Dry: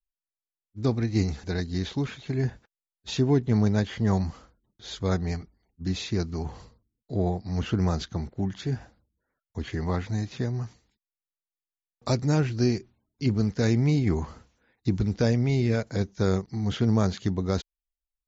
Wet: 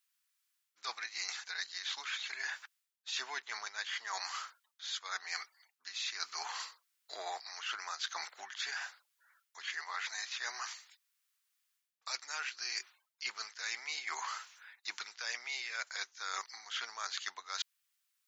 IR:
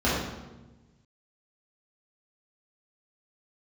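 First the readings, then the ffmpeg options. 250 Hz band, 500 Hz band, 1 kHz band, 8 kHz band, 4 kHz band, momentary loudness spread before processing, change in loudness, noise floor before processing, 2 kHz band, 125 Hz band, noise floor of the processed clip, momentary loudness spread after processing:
under -40 dB, -26.5 dB, -4.5 dB, n/a, +1.0 dB, 11 LU, -12.5 dB, under -85 dBFS, +1.5 dB, under -40 dB, -84 dBFS, 7 LU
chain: -af "highpass=f=1.2k:w=0.5412,highpass=f=1.2k:w=1.3066,areverse,acompressor=threshold=-52dB:ratio=12,areverse,volume=15.5dB"

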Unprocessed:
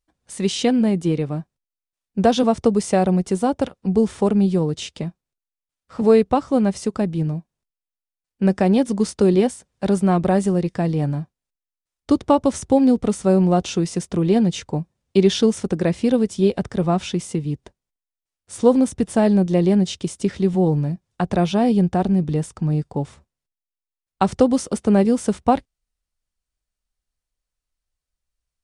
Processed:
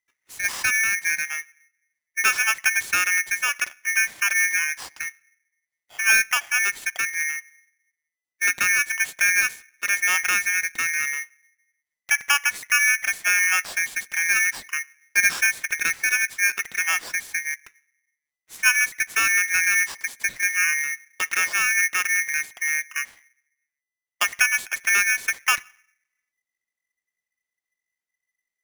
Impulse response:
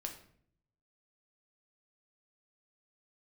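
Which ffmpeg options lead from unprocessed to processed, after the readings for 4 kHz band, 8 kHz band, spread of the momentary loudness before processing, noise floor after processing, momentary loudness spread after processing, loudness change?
+2.5 dB, +11.5 dB, 10 LU, under -85 dBFS, 9 LU, -1.5 dB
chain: -filter_complex "[0:a]asplit=2[a][b];[1:a]atrim=start_sample=2205,lowpass=3.2k[c];[b][c]afir=irnorm=-1:irlink=0,volume=-15dB[d];[a][d]amix=inputs=2:normalize=0,aeval=exprs='val(0)*sgn(sin(2*PI*2000*n/s))':c=same,volume=-5.5dB"

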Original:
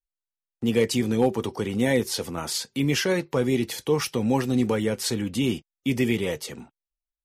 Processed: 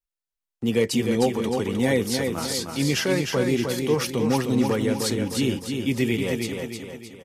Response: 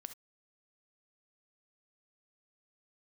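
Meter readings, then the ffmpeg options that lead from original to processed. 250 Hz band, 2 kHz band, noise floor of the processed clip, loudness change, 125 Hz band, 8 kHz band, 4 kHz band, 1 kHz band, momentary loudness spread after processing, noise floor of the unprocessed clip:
+1.5 dB, +1.5 dB, under -85 dBFS, +1.0 dB, +1.5 dB, +1.5 dB, +1.5 dB, +1.5 dB, 5 LU, under -85 dBFS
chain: -af "aecho=1:1:308|616|924|1232|1540|1848:0.562|0.259|0.119|0.0547|0.0252|0.0116"

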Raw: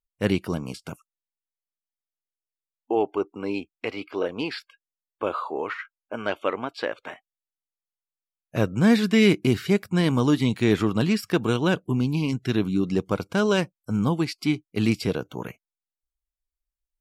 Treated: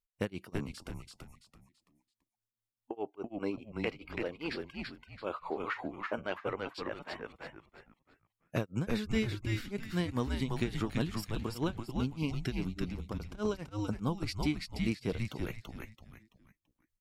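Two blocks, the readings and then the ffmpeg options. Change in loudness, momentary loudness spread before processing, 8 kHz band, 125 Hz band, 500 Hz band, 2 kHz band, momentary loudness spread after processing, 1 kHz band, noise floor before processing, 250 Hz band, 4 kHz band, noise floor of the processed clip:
-12.5 dB, 13 LU, -10.5 dB, -10.0 dB, -12.5 dB, -10.5 dB, 12 LU, -10.0 dB, under -85 dBFS, -12.5 dB, -11.0 dB, under -85 dBFS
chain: -filter_complex "[0:a]acompressor=threshold=-30dB:ratio=3,tremolo=f=4.9:d=0.98,asplit=2[a][b];[b]asplit=4[c][d][e][f];[c]adelay=334,afreqshift=-110,volume=-3dB[g];[d]adelay=668,afreqshift=-220,volume=-12.9dB[h];[e]adelay=1002,afreqshift=-330,volume=-22.8dB[i];[f]adelay=1336,afreqshift=-440,volume=-32.7dB[j];[g][h][i][j]amix=inputs=4:normalize=0[k];[a][k]amix=inputs=2:normalize=0"

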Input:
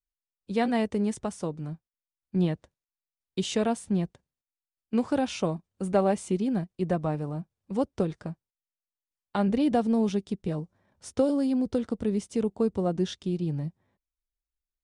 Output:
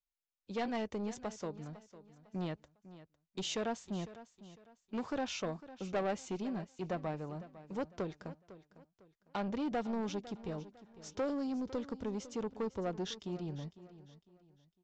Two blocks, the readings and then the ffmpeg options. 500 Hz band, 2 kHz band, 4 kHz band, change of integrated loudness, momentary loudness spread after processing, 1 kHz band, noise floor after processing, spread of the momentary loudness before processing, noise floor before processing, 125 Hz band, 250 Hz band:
-10.0 dB, -6.0 dB, -5.0 dB, -11.0 dB, 19 LU, -8.0 dB, -85 dBFS, 12 LU, under -85 dBFS, -12.5 dB, -12.0 dB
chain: -af "aresample=16000,asoftclip=type=tanh:threshold=-23dB,aresample=44100,equalizer=f=130:w=0.47:g=-7.5,aecho=1:1:503|1006|1509:0.158|0.0523|0.0173,volume=-4dB"

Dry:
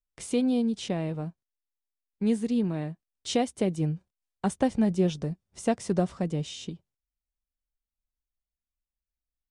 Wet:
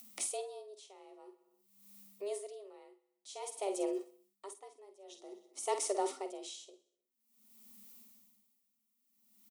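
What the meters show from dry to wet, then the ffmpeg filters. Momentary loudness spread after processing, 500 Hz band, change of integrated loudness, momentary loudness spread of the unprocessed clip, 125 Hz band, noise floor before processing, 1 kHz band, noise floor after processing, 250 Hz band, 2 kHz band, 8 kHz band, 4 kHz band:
22 LU, -8.5 dB, -11.0 dB, 14 LU, under -40 dB, under -85 dBFS, -6.0 dB, -83 dBFS, -21.0 dB, -11.5 dB, 0.0 dB, -10.0 dB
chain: -filter_complex "[0:a]areverse,acompressor=threshold=-36dB:ratio=6,areverse,aemphasis=mode=production:type=50kf,acompressor=mode=upward:threshold=-47dB:ratio=2.5,asuperstop=centerf=1400:order=4:qfactor=4.2,lowshelf=f=180:g=-7.5,asplit=2[a][b];[b]adelay=49,volume=-9dB[c];[a][c]amix=inputs=2:normalize=0,aecho=1:1:63|126|189|252|315:0.126|0.0755|0.0453|0.0272|0.0163,afreqshift=200,aeval=exprs='val(0)*pow(10,-25*(0.5-0.5*cos(2*PI*0.51*n/s))/20)':c=same,volume=7.5dB"

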